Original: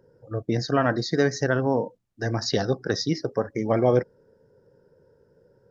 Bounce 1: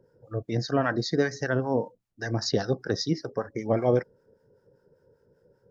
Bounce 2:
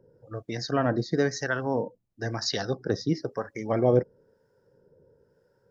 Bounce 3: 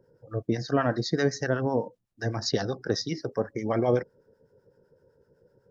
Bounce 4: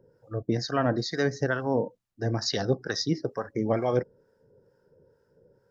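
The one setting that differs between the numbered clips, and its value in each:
harmonic tremolo, rate: 5.1 Hz, 1 Hz, 7.9 Hz, 2.2 Hz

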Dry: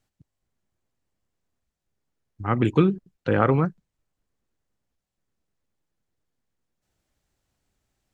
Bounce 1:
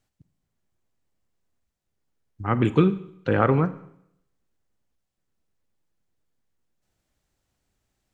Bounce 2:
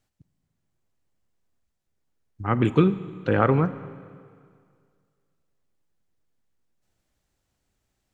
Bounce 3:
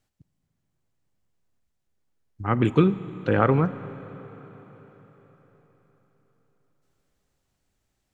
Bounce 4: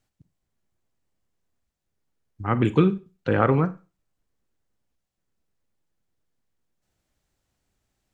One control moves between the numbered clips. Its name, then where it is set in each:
Schroeder reverb, RT60: 0.74 s, 2.1 s, 4.6 s, 0.31 s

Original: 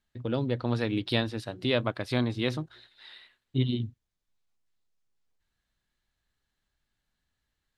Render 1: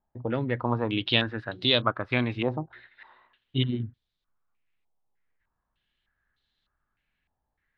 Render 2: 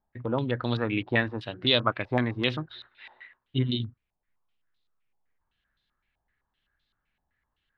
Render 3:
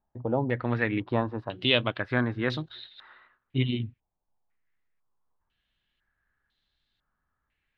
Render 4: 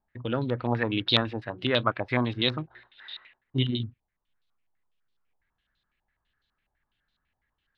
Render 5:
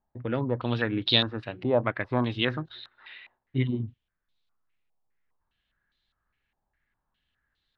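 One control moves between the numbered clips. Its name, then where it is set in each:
step-sequenced low-pass, rate: 3.3 Hz, 7.8 Hz, 2 Hz, 12 Hz, 4.9 Hz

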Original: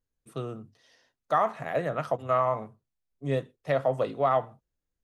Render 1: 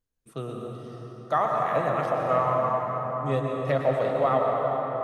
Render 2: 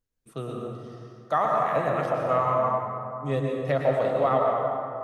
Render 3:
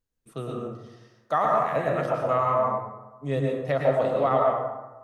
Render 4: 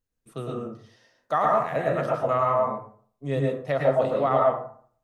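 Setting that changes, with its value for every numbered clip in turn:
plate-style reverb, RT60: 5.2 s, 2.5 s, 1.1 s, 0.52 s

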